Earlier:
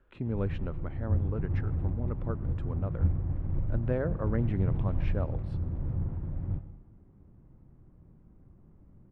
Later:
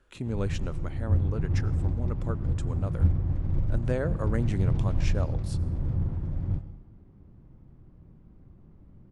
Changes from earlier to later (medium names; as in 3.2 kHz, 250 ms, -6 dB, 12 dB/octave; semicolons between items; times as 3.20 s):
background: add bass shelf 380 Hz +4 dB; master: remove distance through air 500 m